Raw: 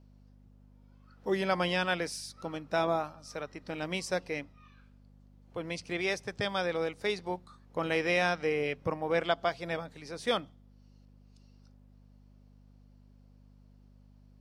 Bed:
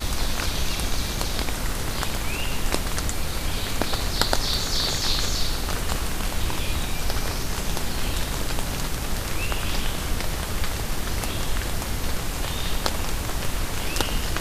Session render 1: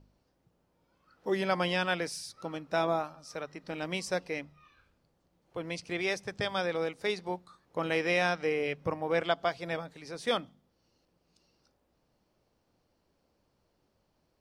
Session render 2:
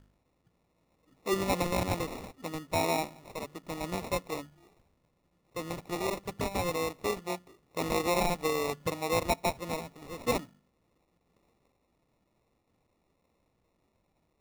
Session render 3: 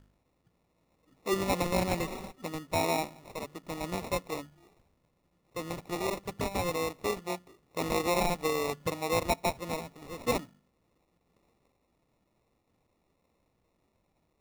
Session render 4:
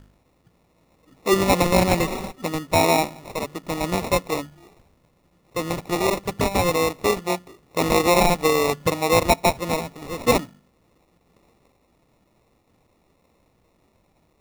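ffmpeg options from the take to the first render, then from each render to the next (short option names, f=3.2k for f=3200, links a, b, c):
-af "bandreject=f=50:t=h:w=4,bandreject=f=100:t=h:w=4,bandreject=f=150:t=h:w=4,bandreject=f=200:t=h:w=4,bandreject=f=250:t=h:w=4"
-af "acrusher=samples=28:mix=1:aa=0.000001"
-filter_complex "[0:a]asettb=1/sr,asplit=3[a][b][c];[a]atrim=end=1.734[d];[b]atrim=start=1.73:end=2.46,asetpts=PTS-STARTPTS,afade=t=in:d=0.004:c=qsin,afade=t=out:st=0.726:d=0.004:c=qsin,aecho=1:1:5.3:0.58,atrim=end_sample=32193[e];[c]atrim=start=2.456[f];[d][e]acrossfade=d=0.004:c1=hsin:c2=qsin[g];[g][f]acrossfade=d=0.004:c1=qsin:c2=hsin"
-af "volume=11dB"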